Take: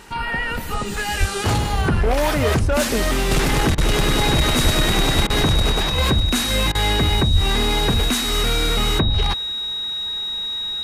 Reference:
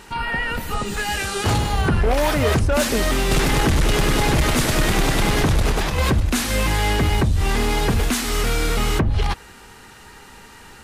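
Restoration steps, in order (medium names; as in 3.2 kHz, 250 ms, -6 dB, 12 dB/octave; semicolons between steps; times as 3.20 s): band-stop 3.8 kHz, Q 30; de-plosive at 1.19/4.63/5.15/7.32 s; interpolate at 3.75/5.27/6.72 s, 28 ms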